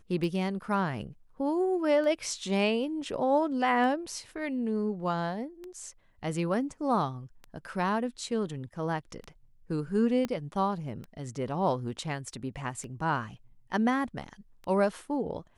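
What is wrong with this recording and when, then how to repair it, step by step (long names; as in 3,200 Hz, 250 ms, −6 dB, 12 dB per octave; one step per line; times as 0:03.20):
scratch tick 33 1/3 rpm
0:10.25: click −18 dBFS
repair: click removal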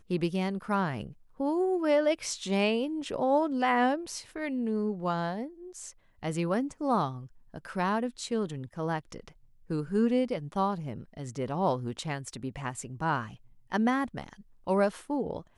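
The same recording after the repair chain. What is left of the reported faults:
0:10.25: click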